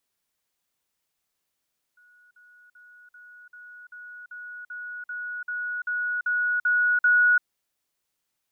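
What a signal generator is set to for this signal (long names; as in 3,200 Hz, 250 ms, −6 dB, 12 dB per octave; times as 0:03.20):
level staircase 1,460 Hz −54.5 dBFS, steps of 3 dB, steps 14, 0.34 s 0.05 s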